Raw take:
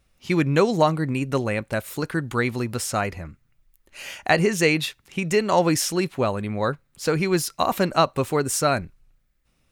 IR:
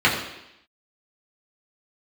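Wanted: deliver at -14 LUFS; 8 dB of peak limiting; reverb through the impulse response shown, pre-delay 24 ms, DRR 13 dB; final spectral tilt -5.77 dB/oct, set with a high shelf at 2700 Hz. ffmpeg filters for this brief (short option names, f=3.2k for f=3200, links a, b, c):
-filter_complex "[0:a]highshelf=f=2.7k:g=-7.5,alimiter=limit=-13.5dB:level=0:latency=1,asplit=2[a][b];[1:a]atrim=start_sample=2205,adelay=24[c];[b][c]afir=irnorm=-1:irlink=0,volume=-34dB[d];[a][d]amix=inputs=2:normalize=0,volume=11.5dB"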